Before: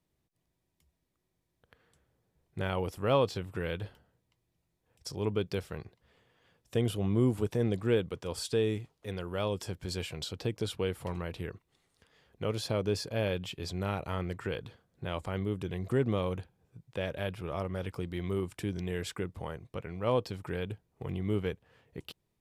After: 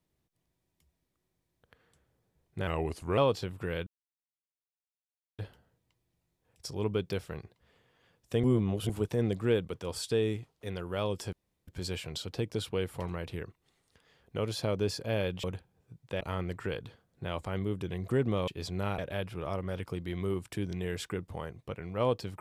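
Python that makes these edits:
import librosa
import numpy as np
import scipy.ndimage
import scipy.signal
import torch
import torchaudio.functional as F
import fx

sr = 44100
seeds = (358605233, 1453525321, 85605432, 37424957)

y = fx.edit(x, sr, fx.speed_span(start_s=2.67, length_s=0.44, speed=0.87),
    fx.insert_silence(at_s=3.8, length_s=1.52),
    fx.reverse_span(start_s=6.85, length_s=0.46),
    fx.insert_room_tone(at_s=9.74, length_s=0.35),
    fx.swap(start_s=13.5, length_s=0.51, other_s=16.28, other_length_s=0.77), tone=tone)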